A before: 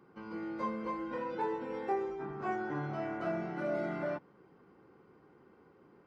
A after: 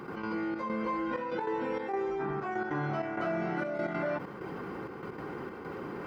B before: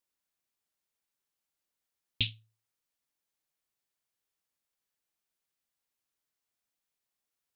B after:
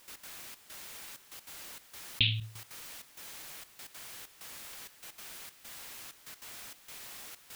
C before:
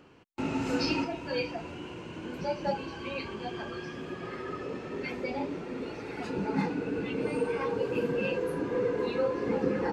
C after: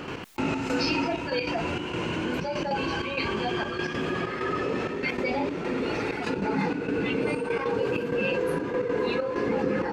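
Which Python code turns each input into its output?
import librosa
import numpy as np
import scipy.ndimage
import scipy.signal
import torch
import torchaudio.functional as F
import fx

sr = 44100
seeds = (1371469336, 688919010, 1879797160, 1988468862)

y = fx.peak_eq(x, sr, hz=2000.0, db=3.5, octaves=2.3)
y = fx.step_gate(y, sr, bpm=194, pattern='.x.xxxx..xxxxxx.', floor_db=-12.0, edge_ms=4.5)
y = fx.env_flatten(y, sr, amount_pct=70)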